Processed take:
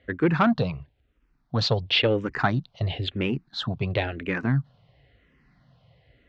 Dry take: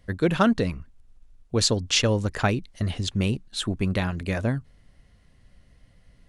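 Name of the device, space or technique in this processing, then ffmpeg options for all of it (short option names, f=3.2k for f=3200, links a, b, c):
barber-pole phaser into a guitar amplifier: -filter_complex "[0:a]asplit=2[a][b];[b]afreqshift=-0.97[c];[a][c]amix=inputs=2:normalize=1,asoftclip=type=tanh:threshold=-17dB,highpass=80,equalizer=f=83:t=q:w=4:g=-8,equalizer=f=140:t=q:w=4:g=5,equalizer=f=200:t=q:w=4:g=-6,equalizer=f=740:t=q:w=4:g=3,lowpass=f=4k:w=0.5412,lowpass=f=4k:w=1.3066,volume=5dB"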